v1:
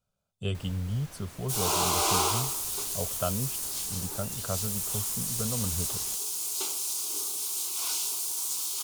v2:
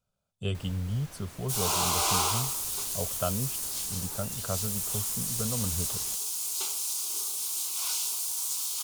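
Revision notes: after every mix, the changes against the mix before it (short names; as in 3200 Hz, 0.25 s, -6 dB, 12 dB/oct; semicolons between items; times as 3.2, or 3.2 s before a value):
second sound: add bell 270 Hz -8.5 dB 1.8 oct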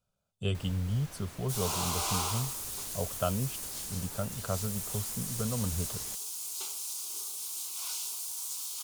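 second sound -6.0 dB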